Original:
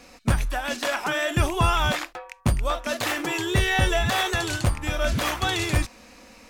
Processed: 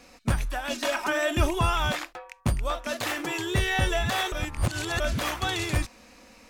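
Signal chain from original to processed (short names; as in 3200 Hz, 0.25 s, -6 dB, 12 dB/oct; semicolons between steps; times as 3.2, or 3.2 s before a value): 0.69–1.59 comb 3.2 ms, depth 75%; 4.32–5 reverse; gain -3.5 dB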